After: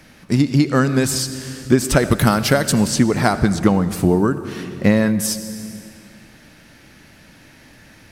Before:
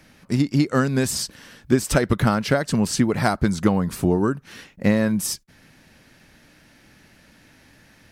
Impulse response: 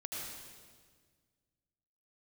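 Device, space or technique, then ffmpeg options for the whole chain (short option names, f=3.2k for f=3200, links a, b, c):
compressed reverb return: -filter_complex "[0:a]asettb=1/sr,asplit=3[a][b][c];[a]atrim=end=2.114[d];[b]atrim=start=2.11:end=2.8,asetpts=PTS-STARTPTS,afade=t=in:d=0.004:c=qsin,afade=t=out:st=0.686:d=0.004:c=qsin,aemphasis=mode=production:type=50kf[e];[c]atrim=start=2.796[f];[d][e]acrossfade=d=0.004:c1=hsin:c2=qsin[g];[g][f]acrossfade=d=0.004:c1=qsin:c2=hsin,asplit=2[h][i];[1:a]atrim=start_sample=2205[j];[i][j]afir=irnorm=-1:irlink=0,acompressor=threshold=-25dB:ratio=4,volume=-3dB[k];[h][k]amix=inputs=2:normalize=0,volume=2.5dB"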